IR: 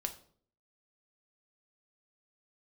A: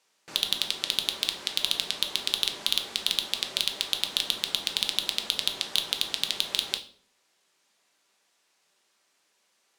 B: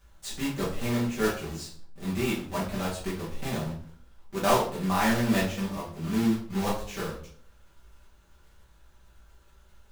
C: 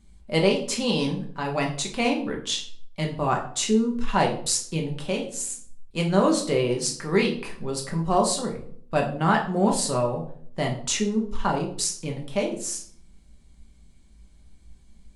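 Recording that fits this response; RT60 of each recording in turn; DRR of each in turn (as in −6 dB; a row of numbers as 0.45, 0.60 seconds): A; 0.55, 0.55, 0.55 seconds; 6.0, −7.0, 0.0 decibels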